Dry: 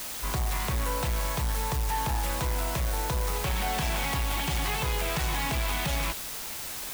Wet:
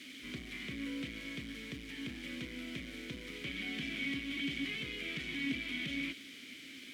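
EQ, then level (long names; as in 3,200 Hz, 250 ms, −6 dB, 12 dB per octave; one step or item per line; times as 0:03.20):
formant filter i
high-pass filter 47 Hz
+5.5 dB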